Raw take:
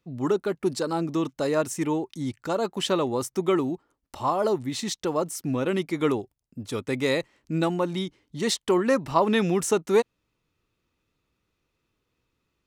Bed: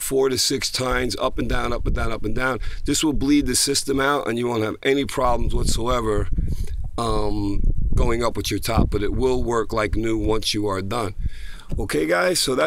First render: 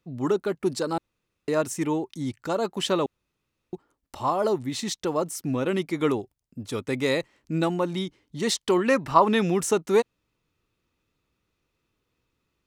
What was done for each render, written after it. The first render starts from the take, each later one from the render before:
0:00.98–0:01.48: fill with room tone
0:03.06–0:03.73: fill with room tone
0:08.54–0:09.27: parametric band 6,400 Hz → 960 Hz +7.5 dB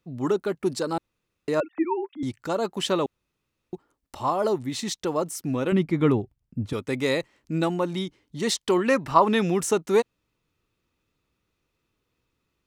0:01.60–0:02.23: three sine waves on the formant tracks
0:05.72–0:06.73: bass and treble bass +11 dB, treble −11 dB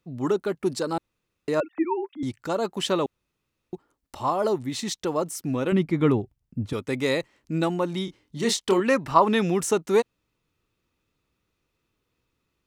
0:08.05–0:08.80: double-tracking delay 26 ms −6 dB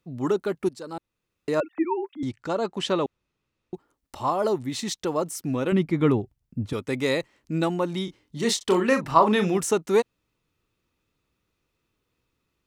0:00.69–0:01.49: fade in, from −16 dB
0:02.24–0:03.74: high-frequency loss of the air 55 metres
0:08.57–0:09.58: double-tracking delay 38 ms −8.5 dB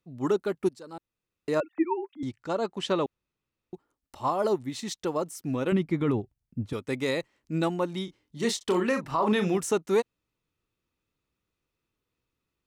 brickwall limiter −15 dBFS, peak gain reduction 11.5 dB
expander for the loud parts 1.5 to 1, over −34 dBFS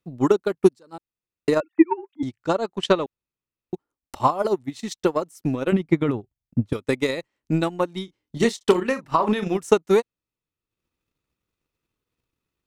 transient designer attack +12 dB, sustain −8 dB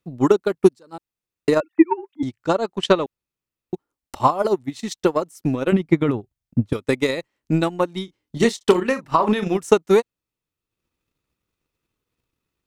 level +2.5 dB
brickwall limiter −2 dBFS, peak gain reduction 1 dB

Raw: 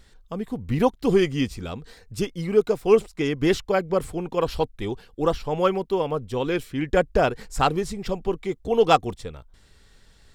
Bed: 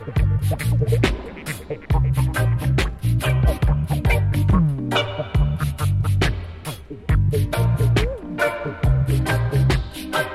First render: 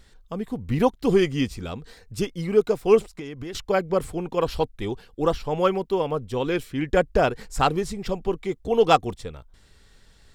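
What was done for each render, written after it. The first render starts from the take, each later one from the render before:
0:03.13–0:03.55: downward compressor 20 to 1, threshold −30 dBFS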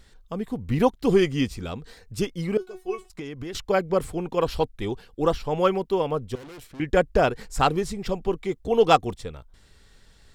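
0:02.57–0:03.10: tuned comb filter 370 Hz, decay 0.16 s, mix 100%
0:06.35–0:06.80: tube saturation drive 41 dB, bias 0.75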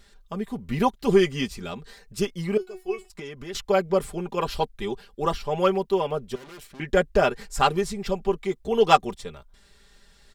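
low-shelf EQ 410 Hz −5 dB
comb filter 5 ms, depth 64%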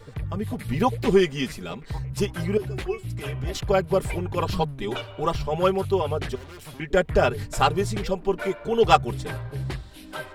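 mix in bed −13 dB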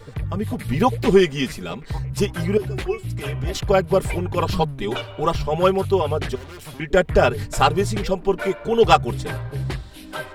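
level +4 dB
brickwall limiter −2 dBFS, peak gain reduction 3 dB

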